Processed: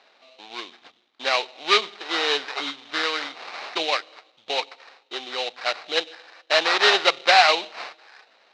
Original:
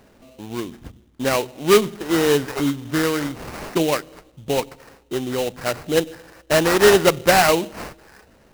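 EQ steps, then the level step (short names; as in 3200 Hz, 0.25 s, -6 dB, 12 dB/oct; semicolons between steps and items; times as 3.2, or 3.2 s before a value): speaker cabinet 490–4600 Hz, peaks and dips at 750 Hz +6 dB, 1200 Hz +3 dB, 2300 Hz +4 dB, 3900 Hz +7 dB; tilt +3 dB/oct; -3.5 dB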